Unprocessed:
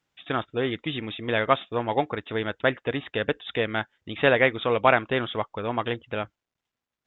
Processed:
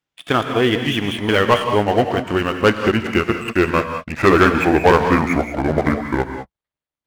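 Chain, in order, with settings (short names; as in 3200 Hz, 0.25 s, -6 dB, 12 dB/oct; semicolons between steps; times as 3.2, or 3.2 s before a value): gliding pitch shift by -9.5 st starting unshifted; bell 3300 Hz +2 dB; sample leveller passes 3; non-linear reverb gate 0.22 s rising, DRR 6.5 dB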